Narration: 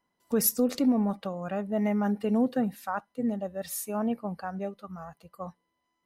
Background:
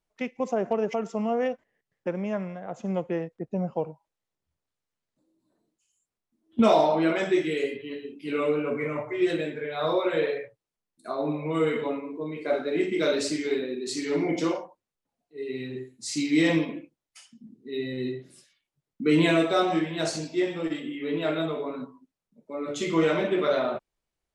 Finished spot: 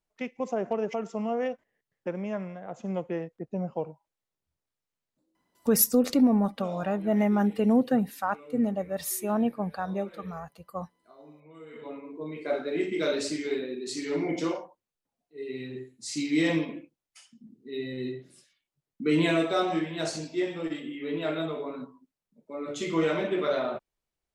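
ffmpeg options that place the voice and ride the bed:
ffmpeg -i stem1.wav -i stem2.wav -filter_complex "[0:a]adelay=5350,volume=3dB[link_01];[1:a]volume=17dB,afade=type=out:start_time=5.17:duration=0.53:silence=0.1,afade=type=in:start_time=11.68:duration=0.61:silence=0.1[link_02];[link_01][link_02]amix=inputs=2:normalize=0" out.wav

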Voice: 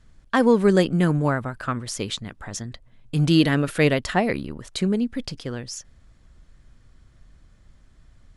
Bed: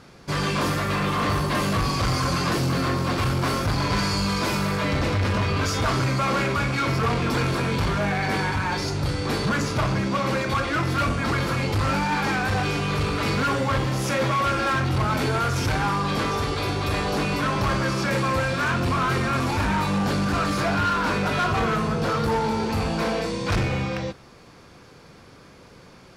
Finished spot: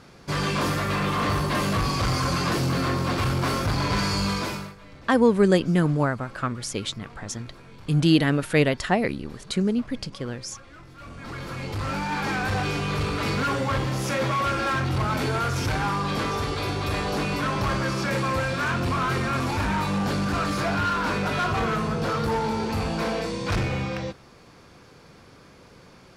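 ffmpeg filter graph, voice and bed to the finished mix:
ffmpeg -i stem1.wav -i stem2.wav -filter_complex "[0:a]adelay=4750,volume=-1dB[link_01];[1:a]volume=20.5dB,afade=type=out:start_time=4.29:duration=0.46:silence=0.0749894,afade=type=in:start_time=10.97:duration=1.49:silence=0.0841395[link_02];[link_01][link_02]amix=inputs=2:normalize=0" out.wav

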